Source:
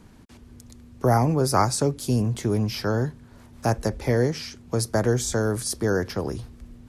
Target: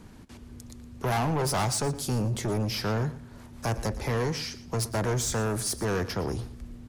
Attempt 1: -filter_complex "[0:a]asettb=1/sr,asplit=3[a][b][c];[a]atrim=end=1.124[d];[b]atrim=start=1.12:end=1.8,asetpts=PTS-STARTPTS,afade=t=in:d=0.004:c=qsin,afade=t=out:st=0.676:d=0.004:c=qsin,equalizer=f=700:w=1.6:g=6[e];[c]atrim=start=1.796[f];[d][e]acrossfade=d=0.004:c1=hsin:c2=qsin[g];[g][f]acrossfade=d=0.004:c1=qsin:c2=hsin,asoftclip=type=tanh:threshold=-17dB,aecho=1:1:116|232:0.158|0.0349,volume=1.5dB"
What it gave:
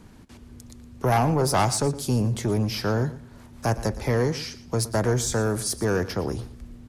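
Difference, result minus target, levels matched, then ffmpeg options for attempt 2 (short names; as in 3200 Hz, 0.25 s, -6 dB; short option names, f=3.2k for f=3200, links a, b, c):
soft clip: distortion -6 dB
-filter_complex "[0:a]asettb=1/sr,asplit=3[a][b][c];[a]atrim=end=1.124[d];[b]atrim=start=1.12:end=1.8,asetpts=PTS-STARTPTS,afade=t=in:d=0.004:c=qsin,afade=t=out:st=0.676:d=0.004:c=qsin,equalizer=f=700:w=1.6:g=6[e];[c]atrim=start=1.796[f];[d][e]acrossfade=d=0.004:c1=hsin:c2=qsin[g];[g][f]acrossfade=d=0.004:c1=qsin:c2=hsin,asoftclip=type=tanh:threshold=-25.5dB,aecho=1:1:116|232:0.158|0.0349,volume=1.5dB"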